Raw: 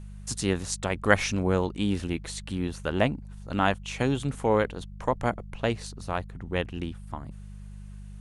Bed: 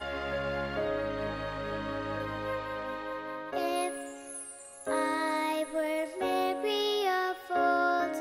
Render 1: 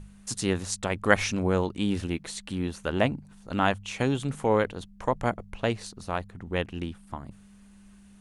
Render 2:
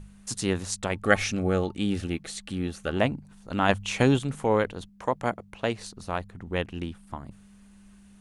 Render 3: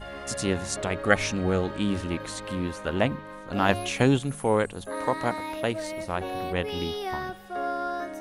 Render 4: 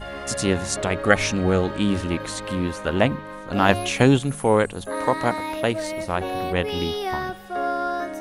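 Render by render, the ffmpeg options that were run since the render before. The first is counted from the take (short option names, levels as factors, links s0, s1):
-af "bandreject=f=50:t=h:w=4,bandreject=f=100:t=h:w=4,bandreject=f=150:t=h:w=4"
-filter_complex "[0:a]asettb=1/sr,asplit=3[s0][s1][s2];[s0]atrim=end=0.924[s3];[s1]atrim=start=0.92:end=2.97,asetpts=PTS-STARTPTS,afade=t=in:d=0.004:c=qsin,afade=t=out:st=2.046:d=0.004:c=qsin,asuperstop=centerf=980:order=20:qfactor=5.5[s4];[s2]atrim=start=2.966[s5];[s3][s4]acrossfade=d=0.004:c1=hsin:c2=qsin[s6];[s6][s5]acrossfade=d=0.004:c1=qsin:c2=hsin,asettb=1/sr,asplit=3[s7][s8][s9];[s7]atrim=end=3.694[s10];[s8]atrim=start=3.69:end=4.19,asetpts=PTS-STARTPTS,afade=t=in:d=0.004:c=qsin,afade=t=out:st=0.496:d=0.004:c=qsin,acontrast=36[s11];[s9]atrim=start=4.186[s12];[s10][s11]acrossfade=d=0.004:c1=hsin:c2=qsin[s13];[s13][s12]acrossfade=d=0.004:c1=qsin:c2=hsin,asettb=1/sr,asplit=3[s14][s15][s16];[s14]atrim=end=4.894[s17];[s15]atrim=start=4.89:end=5.78,asetpts=PTS-STARTPTS,afade=t=in:d=0.004:c=qsin,afade=t=out:st=0.886:d=0.004:c=qsin,highpass=f=150:p=1[s18];[s16]atrim=start=5.776[s19];[s17][s18]acrossfade=d=0.004:c1=hsin:c2=qsin[s20];[s20][s19]acrossfade=d=0.004:c1=qsin:c2=hsin"
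-filter_complex "[1:a]volume=0.668[s0];[0:a][s0]amix=inputs=2:normalize=0"
-af "volume=1.78,alimiter=limit=0.891:level=0:latency=1"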